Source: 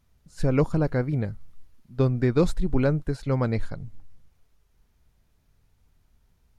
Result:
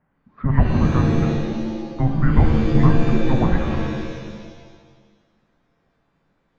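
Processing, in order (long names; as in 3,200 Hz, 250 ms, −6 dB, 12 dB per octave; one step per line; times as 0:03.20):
single-sideband voice off tune −400 Hz 200–2,300 Hz
reverb with rising layers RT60 1.5 s, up +7 semitones, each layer −2 dB, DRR 3.5 dB
level +7.5 dB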